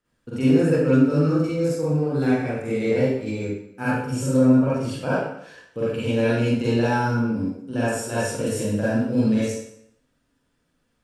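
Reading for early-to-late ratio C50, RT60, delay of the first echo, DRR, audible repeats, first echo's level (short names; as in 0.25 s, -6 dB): -4.5 dB, 0.75 s, none, -10.0 dB, none, none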